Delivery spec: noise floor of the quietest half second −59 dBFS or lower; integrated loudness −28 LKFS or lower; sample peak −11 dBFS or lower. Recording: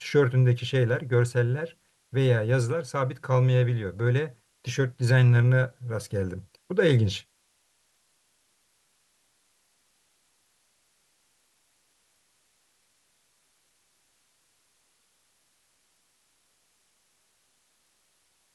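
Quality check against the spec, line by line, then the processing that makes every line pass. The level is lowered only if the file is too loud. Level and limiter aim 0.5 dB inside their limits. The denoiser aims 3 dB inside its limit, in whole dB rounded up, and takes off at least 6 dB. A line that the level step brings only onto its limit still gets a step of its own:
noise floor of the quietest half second −69 dBFS: in spec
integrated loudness −25.0 LKFS: out of spec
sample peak −10.0 dBFS: out of spec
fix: level −3.5 dB

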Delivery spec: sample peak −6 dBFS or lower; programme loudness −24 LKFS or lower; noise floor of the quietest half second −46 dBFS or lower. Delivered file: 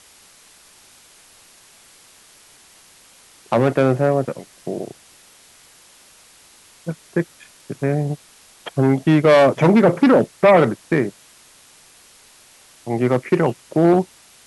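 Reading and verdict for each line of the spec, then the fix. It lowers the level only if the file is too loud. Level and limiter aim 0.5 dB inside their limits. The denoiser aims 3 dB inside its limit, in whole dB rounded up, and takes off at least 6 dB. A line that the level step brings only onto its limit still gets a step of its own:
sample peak −4.5 dBFS: out of spec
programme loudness −17.5 LKFS: out of spec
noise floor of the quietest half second −49 dBFS: in spec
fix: level −7 dB

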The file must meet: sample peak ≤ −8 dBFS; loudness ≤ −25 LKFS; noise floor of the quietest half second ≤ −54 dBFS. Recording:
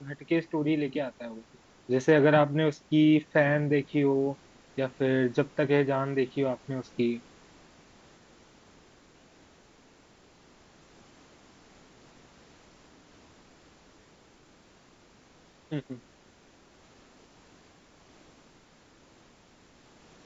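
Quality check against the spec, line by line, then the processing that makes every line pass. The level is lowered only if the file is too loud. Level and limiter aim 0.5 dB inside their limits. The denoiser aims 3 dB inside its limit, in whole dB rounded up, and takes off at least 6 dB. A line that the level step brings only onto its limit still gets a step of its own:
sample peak −9.0 dBFS: in spec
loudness −27.0 LKFS: in spec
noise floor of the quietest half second −59 dBFS: in spec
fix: no processing needed

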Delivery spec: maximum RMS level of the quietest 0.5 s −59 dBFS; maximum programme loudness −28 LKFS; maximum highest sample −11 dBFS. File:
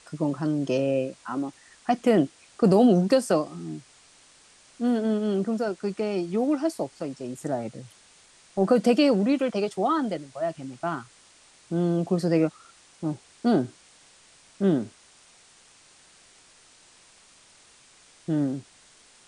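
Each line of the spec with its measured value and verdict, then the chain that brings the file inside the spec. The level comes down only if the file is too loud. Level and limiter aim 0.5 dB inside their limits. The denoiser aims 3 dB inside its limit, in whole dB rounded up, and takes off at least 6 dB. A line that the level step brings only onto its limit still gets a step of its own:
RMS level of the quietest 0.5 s −56 dBFS: out of spec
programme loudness −25.5 LKFS: out of spec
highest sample −9.0 dBFS: out of spec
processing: broadband denoise 6 dB, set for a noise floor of −56 dBFS
level −3 dB

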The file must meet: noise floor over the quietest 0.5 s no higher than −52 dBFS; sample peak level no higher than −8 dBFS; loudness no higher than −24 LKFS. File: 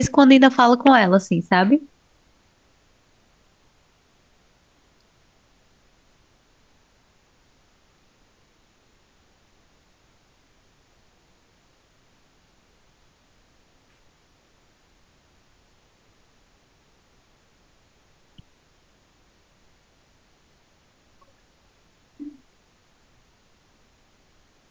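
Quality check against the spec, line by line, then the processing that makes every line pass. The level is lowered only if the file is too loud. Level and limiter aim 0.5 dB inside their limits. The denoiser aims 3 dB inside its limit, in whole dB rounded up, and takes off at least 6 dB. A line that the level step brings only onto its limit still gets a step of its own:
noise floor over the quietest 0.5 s −61 dBFS: in spec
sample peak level −2.5 dBFS: out of spec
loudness −15.0 LKFS: out of spec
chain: level −9.5 dB

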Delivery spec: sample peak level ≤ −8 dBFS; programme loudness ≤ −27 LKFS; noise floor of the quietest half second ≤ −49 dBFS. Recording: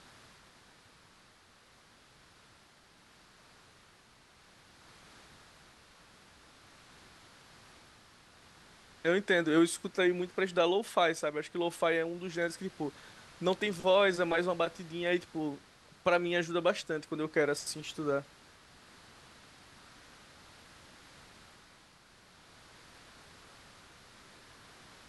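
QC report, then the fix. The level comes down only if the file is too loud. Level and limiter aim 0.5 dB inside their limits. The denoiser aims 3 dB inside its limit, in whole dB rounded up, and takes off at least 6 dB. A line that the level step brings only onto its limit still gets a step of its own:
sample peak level −14.0 dBFS: in spec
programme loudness −31.5 LKFS: in spec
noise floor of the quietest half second −62 dBFS: in spec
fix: no processing needed

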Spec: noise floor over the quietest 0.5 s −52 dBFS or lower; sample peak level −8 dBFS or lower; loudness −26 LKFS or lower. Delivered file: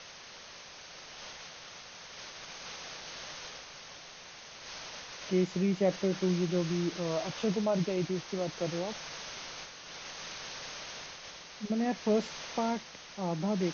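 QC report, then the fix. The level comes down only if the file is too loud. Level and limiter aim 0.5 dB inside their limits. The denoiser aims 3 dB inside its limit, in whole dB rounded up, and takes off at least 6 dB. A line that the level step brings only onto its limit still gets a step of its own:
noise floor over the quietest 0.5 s −49 dBFS: out of spec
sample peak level −16.5 dBFS: in spec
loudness −34.5 LKFS: in spec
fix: broadband denoise 6 dB, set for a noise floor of −49 dBFS

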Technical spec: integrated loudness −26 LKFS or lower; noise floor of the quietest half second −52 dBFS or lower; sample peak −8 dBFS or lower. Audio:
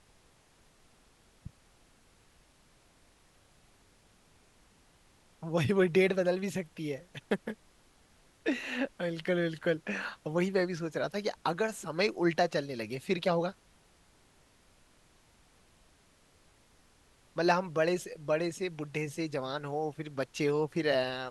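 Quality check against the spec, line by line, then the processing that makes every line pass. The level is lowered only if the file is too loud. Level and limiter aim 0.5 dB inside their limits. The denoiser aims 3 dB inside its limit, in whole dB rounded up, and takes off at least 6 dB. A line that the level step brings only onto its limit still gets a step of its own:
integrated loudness −32.0 LKFS: in spec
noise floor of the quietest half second −64 dBFS: in spec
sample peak −12.5 dBFS: in spec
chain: no processing needed

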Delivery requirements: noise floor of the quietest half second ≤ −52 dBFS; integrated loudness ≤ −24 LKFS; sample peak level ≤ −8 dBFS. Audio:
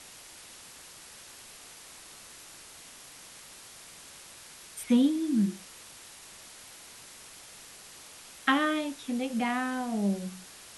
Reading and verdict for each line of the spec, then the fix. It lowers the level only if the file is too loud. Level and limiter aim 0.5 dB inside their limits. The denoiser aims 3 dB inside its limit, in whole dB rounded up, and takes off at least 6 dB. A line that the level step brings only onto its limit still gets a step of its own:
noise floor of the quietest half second −50 dBFS: out of spec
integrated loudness −29.0 LKFS: in spec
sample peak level −10.5 dBFS: in spec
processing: broadband denoise 6 dB, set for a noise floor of −50 dBFS

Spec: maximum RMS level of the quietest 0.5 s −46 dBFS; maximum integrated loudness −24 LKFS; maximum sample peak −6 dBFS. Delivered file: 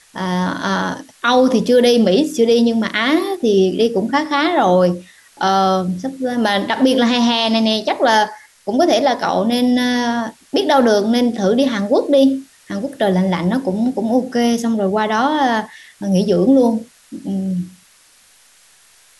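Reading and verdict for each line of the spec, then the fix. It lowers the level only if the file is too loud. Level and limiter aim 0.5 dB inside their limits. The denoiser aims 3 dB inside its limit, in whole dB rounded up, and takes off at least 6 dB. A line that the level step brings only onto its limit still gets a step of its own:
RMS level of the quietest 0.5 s −51 dBFS: in spec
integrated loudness −16.0 LKFS: out of spec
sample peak −4.0 dBFS: out of spec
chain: level −8.5 dB

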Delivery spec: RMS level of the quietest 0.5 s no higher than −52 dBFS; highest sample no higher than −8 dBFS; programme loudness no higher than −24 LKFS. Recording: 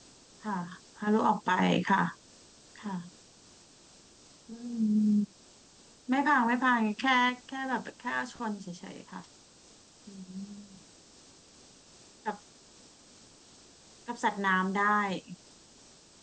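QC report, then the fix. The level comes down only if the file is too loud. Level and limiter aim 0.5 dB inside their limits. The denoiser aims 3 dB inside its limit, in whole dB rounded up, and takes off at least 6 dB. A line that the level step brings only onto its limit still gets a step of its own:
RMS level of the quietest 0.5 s −58 dBFS: in spec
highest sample −14.0 dBFS: in spec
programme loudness −29.5 LKFS: in spec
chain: no processing needed

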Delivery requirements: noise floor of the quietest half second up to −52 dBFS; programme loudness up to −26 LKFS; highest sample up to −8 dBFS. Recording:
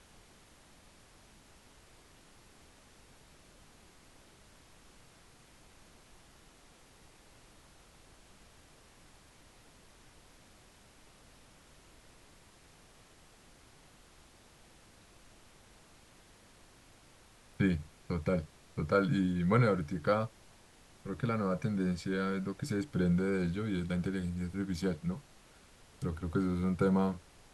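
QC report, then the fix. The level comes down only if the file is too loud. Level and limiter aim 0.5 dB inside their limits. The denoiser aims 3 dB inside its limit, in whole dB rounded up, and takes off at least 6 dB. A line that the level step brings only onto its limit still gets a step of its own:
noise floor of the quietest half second −60 dBFS: in spec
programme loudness −33.5 LKFS: in spec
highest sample −15.5 dBFS: in spec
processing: no processing needed

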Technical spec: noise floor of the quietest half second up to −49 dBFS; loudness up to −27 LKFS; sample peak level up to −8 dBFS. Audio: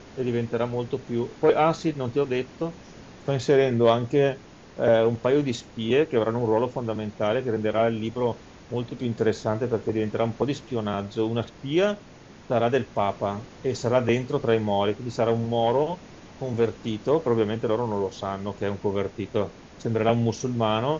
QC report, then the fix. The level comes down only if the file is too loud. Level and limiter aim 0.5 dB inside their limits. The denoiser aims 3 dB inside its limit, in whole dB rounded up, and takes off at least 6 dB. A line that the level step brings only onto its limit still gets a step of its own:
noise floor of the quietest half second −47 dBFS: out of spec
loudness −25.5 LKFS: out of spec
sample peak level −7.0 dBFS: out of spec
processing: broadband denoise 6 dB, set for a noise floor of −47 dBFS
level −2 dB

